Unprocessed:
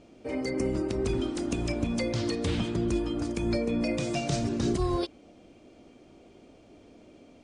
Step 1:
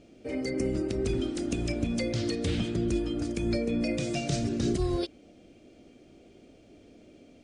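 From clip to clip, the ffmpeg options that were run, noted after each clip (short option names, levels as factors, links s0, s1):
-af "equalizer=f=990:t=o:w=0.68:g=-10.5"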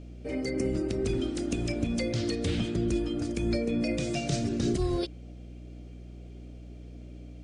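-af "aeval=exprs='val(0)+0.00708*(sin(2*PI*60*n/s)+sin(2*PI*2*60*n/s)/2+sin(2*PI*3*60*n/s)/3+sin(2*PI*4*60*n/s)/4+sin(2*PI*5*60*n/s)/5)':c=same"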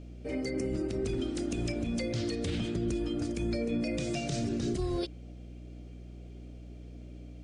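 -af "alimiter=limit=0.0794:level=0:latency=1:release=51,volume=0.841"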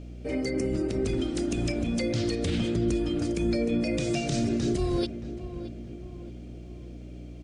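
-filter_complex "[0:a]asplit=2[s0][s1];[s1]adelay=623,lowpass=f=1700:p=1,volume=0.251,asplit=2[s2][s3];[s3]adelay=623,lowpass=f=1700:p=1,volume=0.49,asplit=2[s4][s5];[s5]adelay=623,lowpass=f=1700:p=1,volume=0.49,asplit=2[s6][s7];[s7]adelay=623,lowpass=f=1700:p=1,volume=0.49,asplit=2[s8][s9];[s9]adelay=623,lowpass=f=1700:p=1,volume=0.49[s10];[s0][s2][s4][s6][s8][s10]amix=inputs=6:normalize=0,volume=1.68"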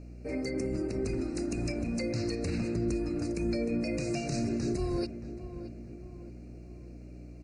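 -af "asuperstop=centerf=3300:order=12:qfactor=2.8,volume=0.596"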